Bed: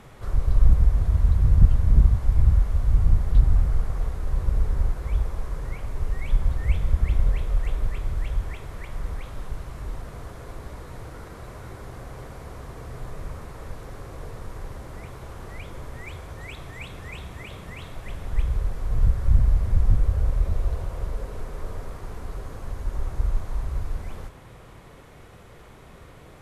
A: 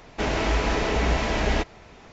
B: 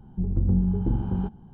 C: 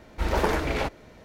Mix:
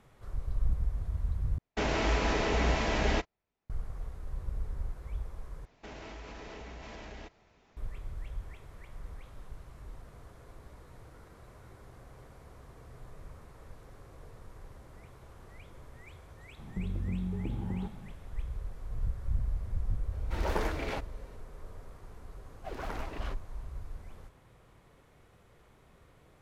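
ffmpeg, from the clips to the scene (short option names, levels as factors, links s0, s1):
-filter_complex "[1:a]asplit=2[s0][s1];[3:a]asplit=2[s2][s3];[0:a]volume=0.211[s4];[s0]agate=range=0.0178:threshold=0.0158:ratio=16:release=100:detection=peak[s5];[s1]acompressor=threshold=0.0631:ratio=6:attack=3.2:release=140:knee=1:detection=peak[s6];[2:a]acompressor=threshold=0.0316:ratio=6:attack=3.2:release=140:knee=1:detection=peak[s7];[s3]aeval=exprs='val(0)*sin(2*PI*530*n/s+530*0.4/5.1*sin(2*PI*5.1*n/s))':c=same[s8];[s4]asplit=3[s9][s10][s11];[s9]atrim=end=1.584[s12];[s5]atrim=end=2.12,asetpts=PTS-STARTPTS,volume=0.562[s13];[s10]atrim=start=3.696:end=5.654[s14];[s6]atrim=end=2.12,asetpts=PTS-STARTPTS,volume=0.141[s15];[s11]atrim=start=7.766[s16];[s7]atrim=end=1.53,asetpts=PTS-STARTPTS,volume=0.944,afade=t=in:d=0.004:c=hsin,afade=t=out:st=1.526:d=0.004:c=hsin,adelay=16590[s17];[s2]atrim=end=1.24,asetpts=PTS-STARTPTS,volume=0.376,afade=t=in:d=0.004:c=hsin,afade=t=out:st=1.236:d=0.004:c=hsin,adelay=20120[s18];[s8]atrim=end=1.24,asetpts=PTS-STARTPTS,volume=0.211,afade=t=in:d=0.004:c=hsin,afade=t=out:st=1.236:d=0.004:c=hsin,adelay=22460[s19];[s12][s13]acrossfade=d=0.004:c1=hsin:c2=hsin[s20];[s20][s14]acrossfade=d=0.004:c1=hsin:c2=hsin[s21];[s21][s15]acrossfade=d=0.004:c1=hsin:c2=hsin[s22];[s22][s16]acrossfade=d=0.004:c1=hsin:c2=hsin[s23];[s23][s17][s18][s19]amix=inputs=4:normalize=0"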